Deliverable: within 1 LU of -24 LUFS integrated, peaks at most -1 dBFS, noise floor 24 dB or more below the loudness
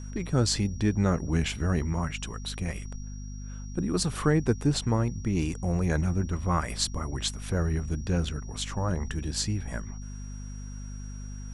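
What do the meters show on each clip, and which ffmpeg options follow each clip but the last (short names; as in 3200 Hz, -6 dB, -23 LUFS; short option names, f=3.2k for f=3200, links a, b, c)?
hum 50 Hz; harmonics up to 250 Hz; hum level -36 dBFS; steady tone 5700 Hz; tone level -51 dBFS; loudness -29.0 LUFS; peak -10.0 dBFS; loudness target -24.0 LUFS
-> -af "bandreject=f=50:t=h:w=6,bandreject=f=100:t=h:w=6,bandreject=f=150:t=h:w=6,bandreject=f=200:t=h:w=6,bandreject=f=250:t=h:w=6"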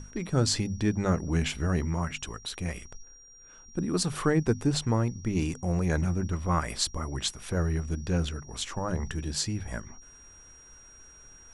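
hum none; steady tone 5700 Hz; tone level -51 dBFS
-> -af "bandreject=f=5.7k:w=30"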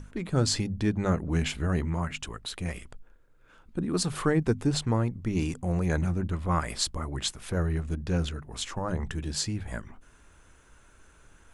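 steady tone none; loudness -29.5 LUFS; peak -11.0 dBFS; loudness target -24.0 LUFS
-> -af "volume=5.5dB"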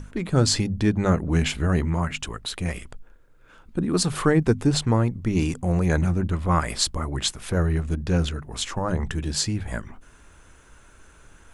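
loudness -24.0 LUFS; peak -5.5 dBFS; noise floor -52 dBFS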